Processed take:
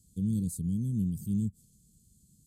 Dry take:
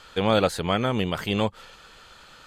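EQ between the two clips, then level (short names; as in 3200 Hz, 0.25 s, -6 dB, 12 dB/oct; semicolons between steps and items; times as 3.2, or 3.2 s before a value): HPF 63 Hz; Chebyshev band-stop 200–8300 Hz, order 3; brick-wall FIR band-stop 520–2100 Hz; 0.0 dB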